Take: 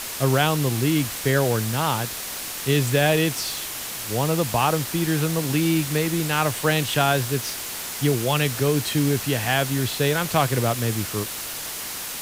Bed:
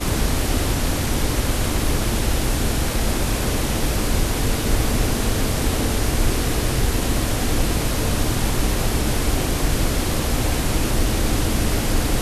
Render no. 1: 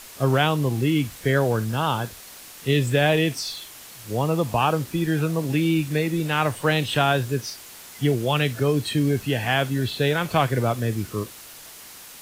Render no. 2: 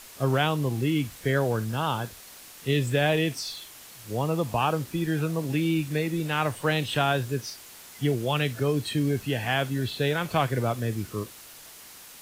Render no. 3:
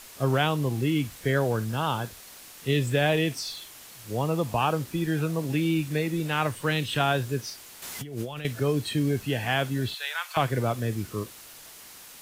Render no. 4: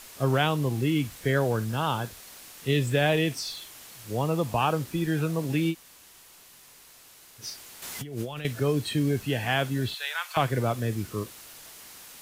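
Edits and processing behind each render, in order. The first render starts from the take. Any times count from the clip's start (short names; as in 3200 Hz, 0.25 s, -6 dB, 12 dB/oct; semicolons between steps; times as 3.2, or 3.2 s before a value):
noise print and reduce 11 dB
gain -4 dB
6.47–7 bell 710 Hz -7.5 dB; 7.82–8.45 negative-ratio compressor -35 dBFS; 9.94–10.37 HPF 960 Hz 24 dB/oct
5.72–7.41 room tone, crossfade 0.06 s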